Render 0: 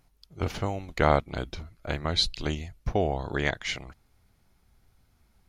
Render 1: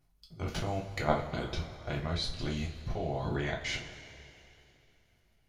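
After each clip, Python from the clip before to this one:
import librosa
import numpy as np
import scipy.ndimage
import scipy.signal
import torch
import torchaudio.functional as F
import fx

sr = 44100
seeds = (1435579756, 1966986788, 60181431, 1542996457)

y = fx.level_steps(x, sr, step_db=19)
y = fx.peak_eq(y, sr, hz=78.0, db=4.0, octaves=1.6)
y = fx.rev_double_slope(y, sr, seeds[0], early_s=0.28, late_s=2.9, knee_db=-18, drr_db=-2.0)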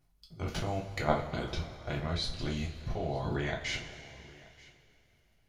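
y = x + 10.0 ** (-22.5 / 20.0) * np.pad(x, (int(930 * sr / 1000.0), 0))[:len(x)]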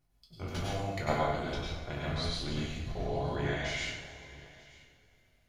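y = fx.rev_plate(x, sr, seeds[1], rt60_s=0.64, hf_ratio=0.9, predelay_ms=85, drr_db=-3.0)
y = y * 10.0 ** (-4.0 / 20.0)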